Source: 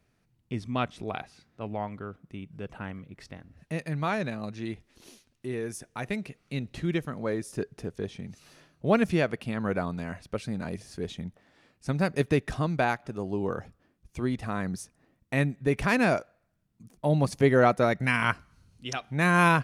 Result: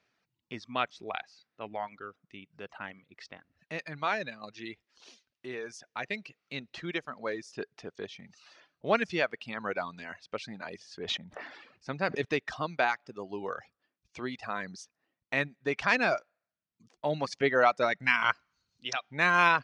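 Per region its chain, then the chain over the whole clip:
10.97–12.25 high shelf 3300 Hz -7.5 dB + sustainer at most 39 dB/s
whole clip: LPF 5700 Hz 24 dB/oct; reverb removal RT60 0.85 s; HPF 950 Hz 6 dB/oct; gain +3 dB

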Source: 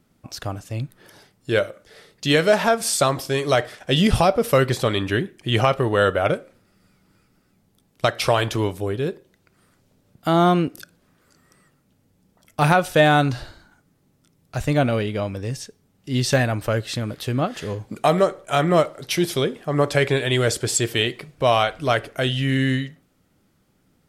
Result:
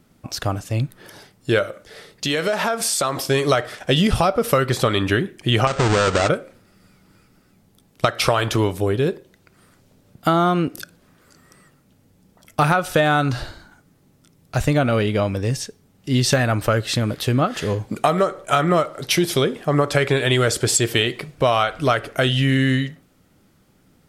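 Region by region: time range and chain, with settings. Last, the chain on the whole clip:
2.25–3.29 low shelf 150 Hz -10 dB + compressor 4:1, threshold -24 dBFS
5.67–6.29 half-waves squared off + compressor 4:1, threshold -19 dBFS + brick-wall FIR low-pass 8800 Hz
whole clip: dynamic EQ 1300 Hz, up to +7 dB, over -39 dBFS, Q 4.7; compressor, threshold -20 dBFS; gain +6 dB

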